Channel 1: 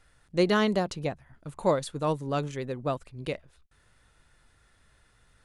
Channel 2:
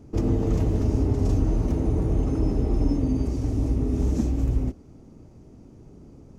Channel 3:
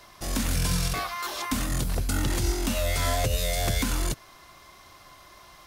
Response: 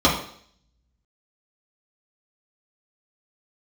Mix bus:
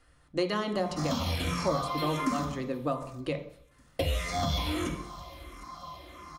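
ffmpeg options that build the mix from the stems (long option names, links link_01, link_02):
-filter_complex "[0:a]volume=-2.5dB,asplit=2[link_01][link_02];[link_02]volume=-21.5dB[link_03];[2:a]asplit=2[link_04][link_05];[link_05]afreqshift=-1.5[link_06];[link_04][link_06]amix=inputs=2:normalize=1,adelay=750,volume=-9dB,asplit=3[link_07][link_08][link_09];[link_07]atrim=end=2.45,asetpts=PTS-STARTPTS,afade=type=out:start_time=2.446:duration=0.004:curve=hsin[link_10];[link_08]atrim=start=2.45:end=3.99,asetpts=PTS-STARTPTS,volume=0[link_11];[link_09]atrim=start=3.99,asetpts=PTS-STARTPTS,afade=type=in:duration=0.004:curve=hsin[link_12];[link_10][link_11][link_12]concat=n=3:v=0:a=1,asplit=3[link_13][link_14][link_15];[link_14]volume=-6dB[link_16];[link_15]volume=-16.5dB[link_17];[3:a]atrim=start_sample=2205[link_18];[link_03][link_16]amix=inputs=2:normalize=0[link_19];[link_19][link_18]afir=irnorm=-1:irlink=0[link_20];[link_17]aecho=0:1:760|1520|2280|3040:1|0.31|0.0961|0.0298[link_21];[link_01][link_13][link_20][link_21]amix=inputs=4:normalize=0,acrossover=split=660|5100[link_22][link_23][link_24];[link_22]acompressor=threshold=-30dB:ratio=4[link_25];[link_23]acompressor=threshold=-32dB:ratio=4[link_26];[link_24]acompressor=threshold=-48dB:ratio=4[link_27];[link_25][link_26][link_27]amix=inputs=3:normalize=0"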